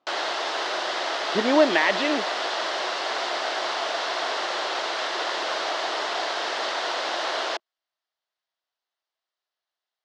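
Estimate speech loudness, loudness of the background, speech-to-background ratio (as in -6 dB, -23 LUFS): -22.5 LUFS, -26.5 LUFS, 4.0 dB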